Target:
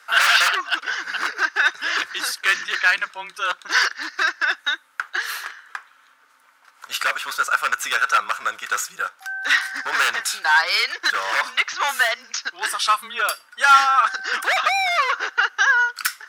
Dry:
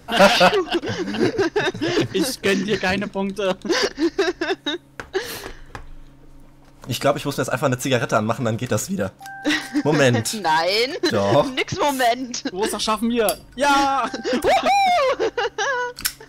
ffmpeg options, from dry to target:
-af "aeval=exprs='0.224*(abs(mod(val(0)/0.224+3,4)-2)-1)':c=same,highpass=f=1400:t=q:w=3.3,afreqshift=-20"

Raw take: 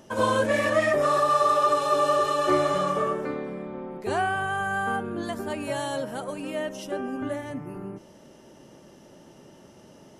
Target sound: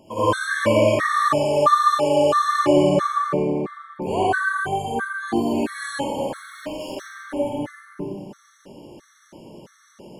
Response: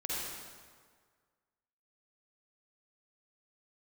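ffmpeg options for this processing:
-filter_complex "[0:a]asettb=1/sr,asplit=3[s0][s1][s2];[s0]atrim=end=6.194[s3];[s1]atrim=start=6.19:end=7.27,asetpts=PTS-STARTPTS,afade=t=in:d=0.004:c=qsin,afade=t=out:st=1.076:d=0.004:c=qsin,volume=50.1,asoftclip=hard,volume=0.02[s4];[s2]atrim=start=7.266[s5];[s3][s4]acrossfade=d=0.004:c1=hsin:c2=qsin[s6];[s6][s5]acrossfade=d=0.004:c1=qsin:c2=hsin[s7];[1:a]atrim=start_sample=2205[s8];[s7][s8]afir=irnorm=-1:irlink=0,afftfilt=real='re*gt(sin(2*PI*1.5*pts/sr)*(1-2*mod(floor(b*sr/1024/1100),2)),0)':imag='im*gt(sin(2*PI*1.5*pts/sr)*(1-2*mod(floor(b*sr/1024/1100),2)),0)':win_size=1024:overlap=0.75,volume=1.5"

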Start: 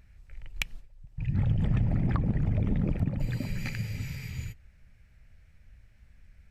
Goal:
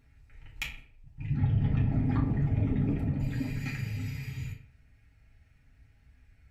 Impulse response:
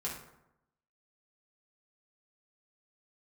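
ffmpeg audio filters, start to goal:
-filter_complex "[0:a]asettb=1/sr,asplit=3[s0][s1][s2];[s0]atrim=end=1.384[s3];[s1]atrim=start=1.38:end=1.92,asetpts=PTS-STARTPTS,afade=t=in:d=0.004:c=qsin,afade=t=out:st=0.536:d=0.004:c=qsin,lowpass=f=5500:w=0.5412,lowpass=f=5500:w=1.3066[s4];[s2]atrim=start=1.916[s5];[s3][s4]acrossfade=d=0.004:c1=hsin:c2=qsin[s6];[s6][s5]acrossfade=d=0.004:c1=qsin:c2=hsin[s7];[1:a]atrim=start_sample=2205,asetrate=79380,aresample=44100[s8];[s7][s8]afir=irnorm=-1:irlink=0,volume=1.19"

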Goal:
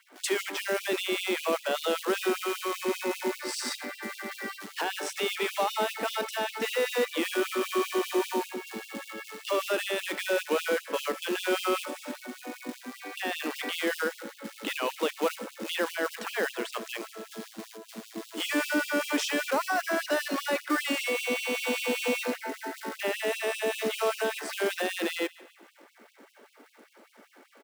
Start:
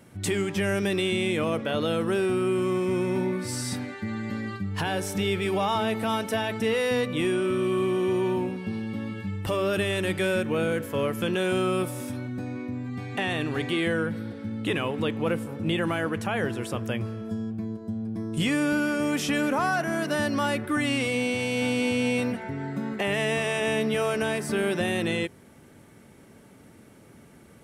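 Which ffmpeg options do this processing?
-filter_complex "[0:a]acrossover=split=630|6800[s0][s1][s2];[s1]alimiter=level_in=1.33:limit=0.0631:level=0:latency=1:release=22,volume=0.75[s3];[s0][s3][s2]amix=inputs=3:normalize=0,adynamicsmooth=sensitivity=7.5:basefreq=3500,acrusher=bits=5:mode=log:mix=0:aa=0.000001,lowshelf=f=490:g=-9,aecho=1:1:146|292|438|584:0.1|0.05|0.025|0.0125,asplit=2[s4][s5];[s5]acrusher=samples=13:mix=1:aa=0.000001,volume=0.316[s6];[s4][s6]amix=inputs=2:normalize=0,asettb=1/sr,asplit=3[s7][s8][s9];[s7]atrim=end=2.424[s10];[s8]atrim=start=2.42:end=2.84,asetpts=PTS-STARTPTS,afade=t=in:d=0.004:c=qsin,afade=t=out:st=0.416:d=0.004:c=qsin,equalizer=f=250:w=1.3:g=-13[s11];[s9]atrim=start=2.836[s12];[s10][s11]acrossfade=d=0.004:c1=hsin:c2=qsin[s13];[s13][s12]acrossfade=d=0.004:c1=qsin:c2=hsin,afftfilt=real='re*gte(b*sr/1024,210*pow(2600/210,0.5+0.5*sin(2*PI*5.1*pts/sr)))':imag='im*gte(b*sr/1024,210*pow(2600/210,0.5+0.5*sin(2*PI*5.1*pts/sr)))':win_size=1024:overlap=0.75,volume=1.68"

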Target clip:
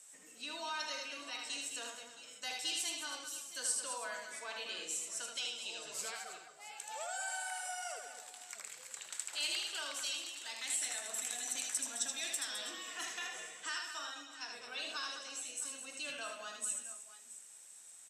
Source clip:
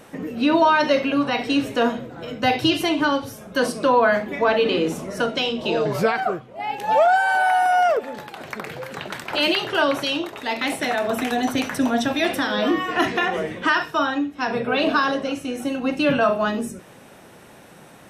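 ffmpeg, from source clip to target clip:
-af "bandpass=f=7700:t=q:w=6.3:csg=0,aecho=1:1:78|208|212|320|667|679:0.596|0.15|0.316|0.188|0.158|0.112,volume=2.37"

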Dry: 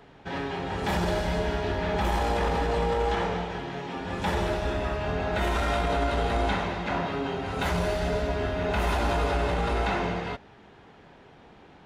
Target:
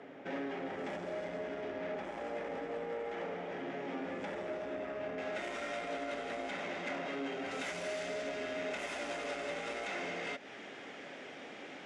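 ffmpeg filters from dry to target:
-af "asetnsamples=n=441:p=0,asendcmd='5.18 highshelf g 5;7.51 highshelf g 11.5',highshelf=f=2200:g=-8,acompressor=threshold=0.0158:ratio=5,asoftclip=type=tanh:threshold=0.0133,highpass=260,equalizer=f=270:t=q:w=4:g=7,equalizer=f=570:t=q:w=4:g=7,equalizer=f=950:t=q:w=4:g=-7,equalizer=f=2100:t=q:w=4:g=6,equalizer=f=4200:t=q:w=4:g=-7,lowpass=f=8600:w=0.5412,lowpass=f=8600:w=1.3066,volume=1.26"

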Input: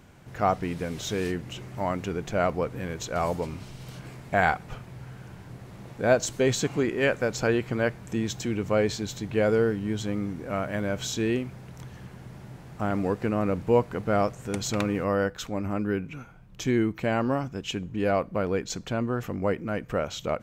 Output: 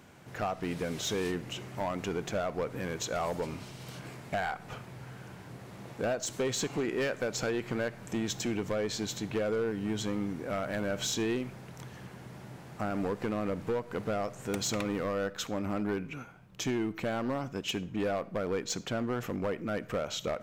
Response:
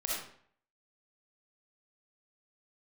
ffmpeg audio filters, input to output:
-filter_complex "[0:a]highpass=f=190:p=1,acompressor=threshold=0.0501:ratio=16,volume=21.1,asoftclip=hard,volume=0.0473,asplit=2[s0][s1];[1:a]atrim=start_sample=2205[s2];[s1][s2]afir=irnorm=-1:irlink=0,volume=0.075[s3];[s0][s3]amix=inputs=2:normalize=0"

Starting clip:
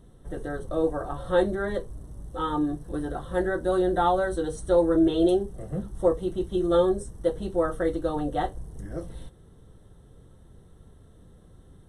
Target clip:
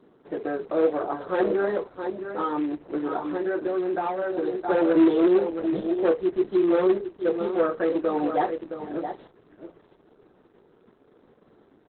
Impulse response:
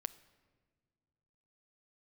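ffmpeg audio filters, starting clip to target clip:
-filter_complex "[0:a]equalizer=f=350:w=0.69:g=7,acrusher=bits=5:mode=log:mix=0:aa=0.000001,highpass=44,aecho=1:1:666:0.299,asplit=2[s0][s1];[s1]highpass=f=720:p=1,volume=6.31,asoftclip=type=tanh:threshold=0.631[s2];[s0][s2]amix=inputs=2:normalize=0,lowpass=f=2200:p=1,volume=0.501,asplit=3[s3][s4][s5];[s3]afade=t=out:st=2.4:d=0.02[s6];[s4]acompressor=threshold=0.141:ratio=12,afade=t=in:st=2.4:d=0.02,afade=t=out:st=4.52:d=0.02[s7];[s5]afade=t=in:st=4.52:d=0.02[s8];[s6][s7][s8]amix=inputs=3:normalize=0,lowpass=f=4500:t=q:w=4.6,acrossover=split=150 2600:gain=0.0794 1 0.0631[s9][s10][s11];[s9][s10][s11]amix=inputs=3:normalize=0,bandreject=f=530:w=12,volume=0.596" -ar 48000 -c:a libopus -b:a 8k

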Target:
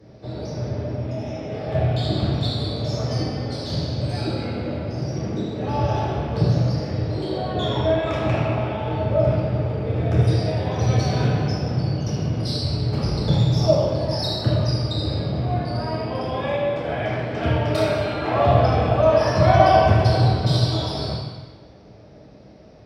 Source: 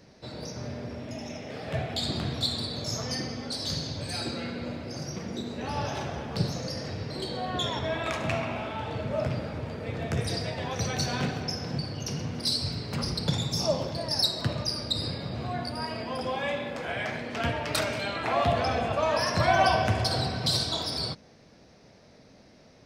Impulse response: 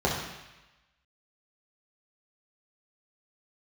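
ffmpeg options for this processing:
-filter_complex "[1:a]atrim=start_sample=2205,asetrate=35280,aresample=44100[s0];[0:a][s0]afir=irnorm=-1:irlink=0,volume=0.316"

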